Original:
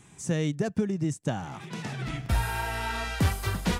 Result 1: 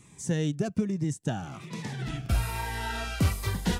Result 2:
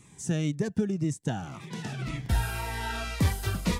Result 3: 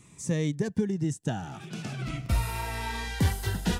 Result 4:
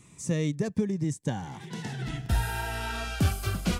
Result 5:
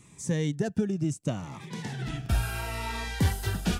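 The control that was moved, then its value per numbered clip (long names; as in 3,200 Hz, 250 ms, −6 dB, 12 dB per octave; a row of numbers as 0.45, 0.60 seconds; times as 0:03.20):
phaser whose notches keep moving one way, speed: 1.2, 1.9, 0.41, 0.22, 0.72 Hertz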